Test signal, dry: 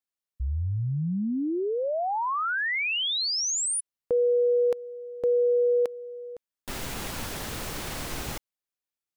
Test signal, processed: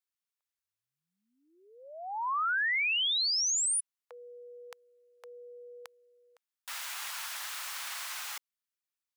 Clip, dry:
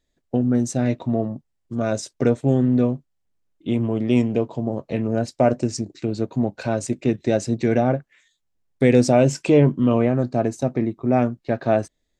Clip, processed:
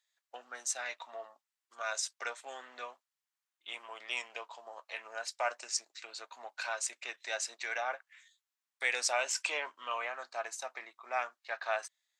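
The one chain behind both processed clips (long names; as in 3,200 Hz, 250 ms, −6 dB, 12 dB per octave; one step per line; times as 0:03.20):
high-pass filter 1,000 Hz 24 dB per octave
level −1.5 dB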